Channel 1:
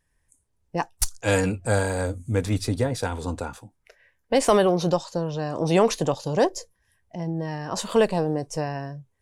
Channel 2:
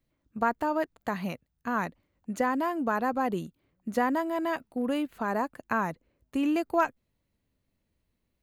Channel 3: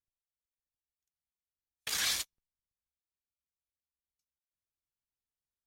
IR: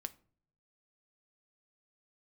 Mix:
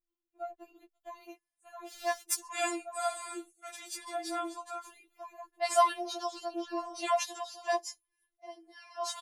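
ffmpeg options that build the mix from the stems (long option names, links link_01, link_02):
-filter_complex "[0:a]highpass=frequency=600:width=0.5412,highpass=frequency=600:width=1.3066,adelay=1300,volume=-3.5dB[link_01];[1:a]aecho=1:1:6.1:0.71,acompressor=threshold=-30dB:ratio=6,volume=-9.5dB[link_02];[2:a]aeval=exprs='val(0)*sgn(sin(2*PI*330*n/s))':channel_layout=same,volume=-15dB[link_03];[link_01][link_02][link_03]amix=inputs=3:normalize=0,agate=range=-8dB:threshold=-48dB:ratio=16:detection=peak,afftfilt=real='re*4*eq(mod(b,16),0)':imag='im*4*eq(mod(b,16),0)':win_size=2048:overlap=0.75"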